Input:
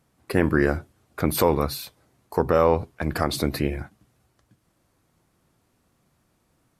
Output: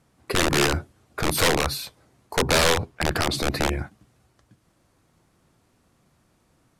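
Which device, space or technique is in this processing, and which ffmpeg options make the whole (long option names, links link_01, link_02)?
overflowing digital effects unit: -filter_complex "[0:a]asettb=1/sr,asplit=3[link_01][link_02][link_03];[link_01]atrim=end=2.344[link_04];[link_02]atrim=start=2.34:end=3.69,asetpts=PTS-STARTPTS,afade=type=in:duration=0.004:curve=qsin,afade=type=out:start_time=1.346:duration=0.004:curve=qsin,highshelf=frequency=6600:gain=-5.5[link_05];[link_03]atrim=start=3.686[link_06];[link_04][link_05]acrossfade=duration=0.004:curve1=hsin:curve2=qsin[link_07];[link_07][link_06]acrossfade=duration=0.004:curve1=qsin:curve2=hsin,aeval=exprs='(mod(6.31*val(0)+1,2)-1)/6.31':channel_layout=same,lowpass=11000,volume=3.5dB"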